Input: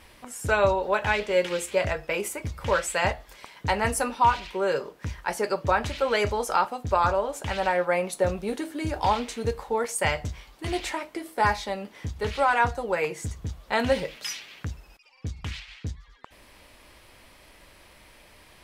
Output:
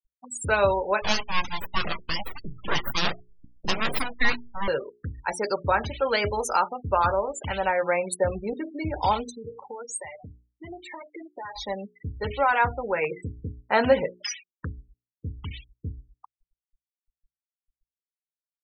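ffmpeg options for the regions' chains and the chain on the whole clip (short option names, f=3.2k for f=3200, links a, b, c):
-filter_complex "[0:a]asettb=1/sr,asplit=3[a][b][c];[a]atrim=end=1.024[d];[b]atrim=start=1.02:end=4.68,asetpts=PTS-STARTPTS,afade=t=in:d=0.004:c=qsin,afade=t=out:st=3.656:d=0.004:c=qsin,highshelf=f=2.8k:g=5.5,aeval=exprs='abs(val(0))':c=same[e];[c]atrim=start=4.676[f];[d][e]acrossfade=d=0.004:c1=hsin:c2=qsin[g];[g][f]acrossfade=d=0.004:c1=qsin:c2=hsin,asettb=1/sr,asplit=3[h][i][j];[h]atrim=end=9.294[k];[i]atrim=start=9.29:end=11.56,asetpts=PTS-STARTPTS,afade=t=in:d=0.004:c=qsin,afade=t=out:st=2.266:d=0.004:c=qsin,highpass=f=190:p=1,acompressor=threshold=-34dB:ratio=6:attack=3.2:release=140:knee=1:detection=peak[l];[j]atrim=start=11.556[m];[k][l]acrossfade=d=0.004:c1=hsin:c2=qsin[n];[n][m]acrossfade=d=0.004:c1=qsin:c2=hsin,asettb=1/sr,asplit=3[o][p][q];[o]atrim=end=13.114[r];[p]atrim=start=13.11:end=14.67,asetpts=PTS-STARTPTS,afade=t=in:d=0.004:c=qsin,afade=t=out:st=1.556:d=0.004:c=qsin,lowpass=f=1.7k:p=1,lowshelf=f=120:g=-10.5,acontrast=39[s];[q]atrim=start=14.666[t];[r][s]acrossfade=d=0.004:c1=hsin:c2=qsin[u];[u][t]acrossfade=d=0.004:c1=qsin:c2=hsin,afftfilt=real='re*gte(hypot(re,im),0.0316)':imag='im*gte(hypot(re,im),0.0316)':win_size=1024:overlap=0.75,equalizer=f=7k:t=o:w=1.3:g=9.5,bandreject=f=60:t=h:w=6,bandreject=f=120:t=h:w=6,bandreject=f=180:t=h:w=6,bandreject=f=240:t=h:w=6,bandreject=f=300:t=h:w=6,bandreject=f=360:t=h:w=6,bandreject=f=420:t=h:w=6"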